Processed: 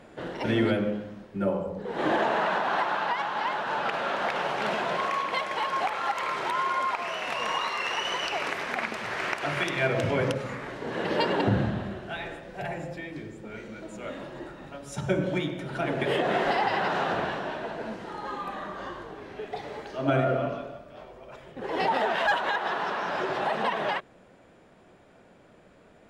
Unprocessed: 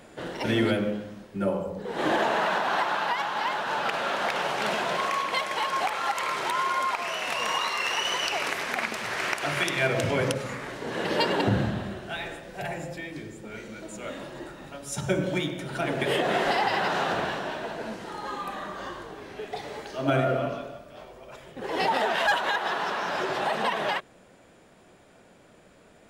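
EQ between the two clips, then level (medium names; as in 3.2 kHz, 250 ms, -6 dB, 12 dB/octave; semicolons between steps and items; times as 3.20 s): treble shelf 3.8 kHz -7.5 dB; treble shelf 8.7 kHz -6.5 dB; 0.0 dB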